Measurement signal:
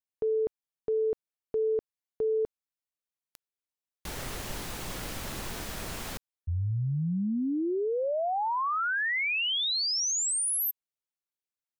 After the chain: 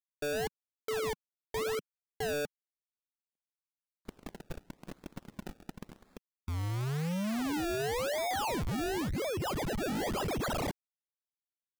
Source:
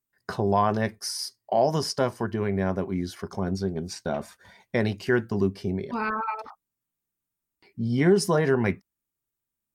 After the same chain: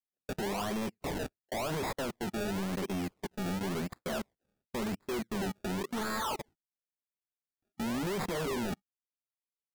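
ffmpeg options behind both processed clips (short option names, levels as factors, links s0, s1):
-filter_complex "[0:a]agate=range=0.0178:threshold=0.0178:ratio=16:release=22:detection=rms,lowshelf=f=150:t=q:w=1.5:g=-7.5,acrossover=split=5800[s0][s1];[s0]acompressor=threshold=0.0282:ratio=12:attack=2.3:release=28[s2];[s2][s1]amix=inputs=2:normalize=0,volume=37.6,asoftclip=hard,volume=0.0266,asplit=2[s3][s4];[s4]adynamicsmooth=sensitivity=5:basefreq=590,volume=1.12[s5];[s3][s5]amix=inputs=2:normalize=0,acrusher=samples=29:mix=1:aa=0.000001:lfo=1:lforange=29:lforate=0.94,asoftclip=type=tanh:threshold=0.0133,volume=1.88"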